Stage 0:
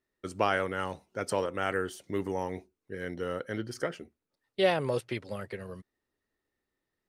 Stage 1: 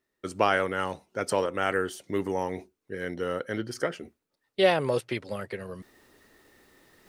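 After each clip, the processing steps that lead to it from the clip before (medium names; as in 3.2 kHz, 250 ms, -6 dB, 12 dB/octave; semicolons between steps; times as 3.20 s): bass shelf 100 Hz -7 dB; reverse; upward compressor, threshold -44 dBFS; reverse; trim +4 dB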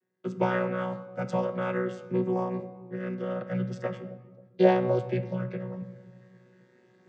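vocoder on a held chord bare fifth, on B2; bucket-brigade echo 266 ms, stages 1024, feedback 48%, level -15.5 dB; on a send at -8 dB: reverberation RT60 1.1 s, pre-delay 4 ms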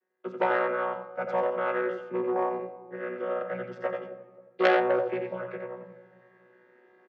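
band-pass 480–2100 Hz; on a send: delay 89 ms -6 dB; on the sum: transformer saturation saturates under 1.6 kHz; trim +4.5 dB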